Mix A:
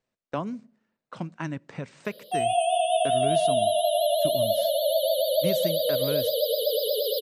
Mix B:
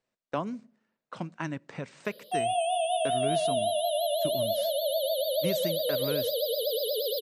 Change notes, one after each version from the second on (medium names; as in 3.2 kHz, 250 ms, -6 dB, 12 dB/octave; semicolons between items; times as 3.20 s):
background: send -9.0 dB; master: add bass shelf 200 Hz -5.5 dB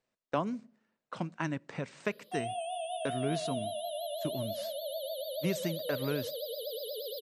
background -9.5 dB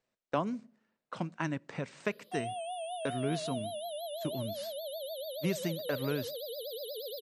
reverb: off